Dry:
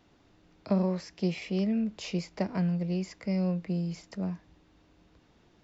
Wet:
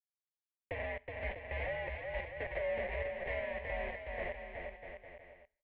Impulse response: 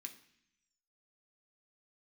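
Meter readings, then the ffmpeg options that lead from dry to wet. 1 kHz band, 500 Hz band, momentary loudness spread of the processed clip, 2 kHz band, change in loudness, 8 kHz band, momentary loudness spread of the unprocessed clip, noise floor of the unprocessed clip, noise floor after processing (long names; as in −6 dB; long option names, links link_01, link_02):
−0.5 dB, −2.0 dB, 13 LU, +7.0 dB, −8.5 dB, can't be measured, 8 LU, −64 dBFS, below −85 dBFS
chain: -filter_complex "[0:a]bandreject=frequency=500:width=12,acrusher=bits=4:mix=0:aa=0.000001,asplit=3[link_01][link_02][link_03];[link_01]bandpass=frequency=300:width_type=q:width=8,volume=0dB[link_04];[link_02]bandpass=frequency=870:width_type=q:width=8,volume=-6dB[link_05];[link_03]bandpass=frequency=2240:width_type=q:width=8,volume=-9dB[link_06];[link_04][link_05][link_06]amix=inputs=3:normalize=0,aecho=1:1:370|647.5|855.6|1012|1129:0.631|0.398|0.251|0.158|0.1,asplit=2[link_07][link_08];[1:a]atrim=start_sample=2205[link_09];[link_08][link_09]afir=irnorm=-1:irlink=0,volume=-5.5dB[link_10];[link_07][link_10]amix=inputs=2:normalize=0,highpass=frequency=460:width_type=q:width=0.5412,highpass=frequency=460:width_type=q:width=1.307,lowpass=frequency=3200:width_type=q:width=0.5176,lowpass=frequency=3200:width_type=q:width=0.7071,lowpass=frequency=3200:width_type=q:width=1.932,afreqshift=-300,volume=9.5dB"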